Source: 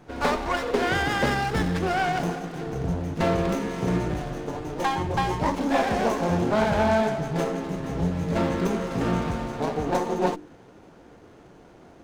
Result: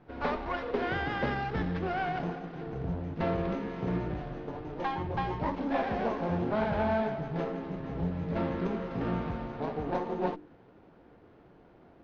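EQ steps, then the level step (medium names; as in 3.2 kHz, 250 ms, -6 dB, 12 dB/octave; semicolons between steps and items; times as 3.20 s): low-pass 6 kHz 24 dB/octave; distance through air 230 m; -6.5 dB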